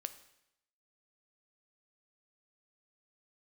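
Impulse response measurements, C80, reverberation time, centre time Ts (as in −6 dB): 15.5 dB, 0.80 s, 7 ms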